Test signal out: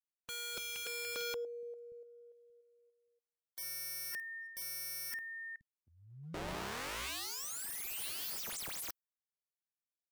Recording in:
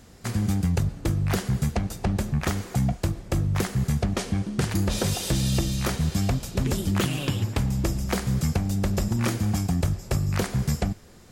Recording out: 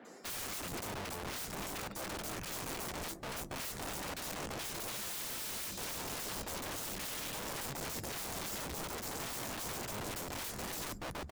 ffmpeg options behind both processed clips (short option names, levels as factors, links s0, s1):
-filter_complex "[0:a]acrossover=split=250|3700[s0][s1][s2];[s2]adelay=50[s3];[s0]adelay=470[s4];[s4][s1][s3]amix=inputs=3:normalize=0,areverse,acompressor=threshold=0.0178:ratio=6,areverse,aeval=exprs='(mod(100*val(0)+1,2)-1)/100':c=same,asplit=2[s5][s6];[s6]acrusher=bits=2:mode=log:mix=0:aa=0.000001,volume=0.299[s7];[s5][s7]amix=inputs=2:normalize=0,afftdn=nr=14:nf=-60,volume=1.19"